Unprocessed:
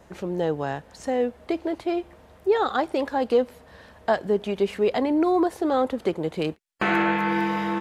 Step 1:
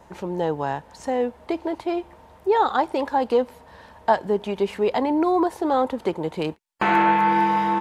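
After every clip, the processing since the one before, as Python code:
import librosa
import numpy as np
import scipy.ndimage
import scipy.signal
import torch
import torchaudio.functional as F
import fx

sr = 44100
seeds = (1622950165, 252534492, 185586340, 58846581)

y = fx.peak_eq(x, sr, hz=920.0, db=11.0, octaves=0.31)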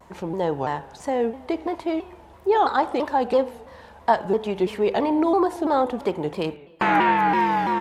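y = fx.rev_spring(x, sr, rt60_s=1.0, pass_ms=(41, 53), chirp_ms=45, drr_db=13.5)
y = fx.vibrato_shape(y, sr, shape='saw_down', rate_hz=3.0, depth_cents=160.0)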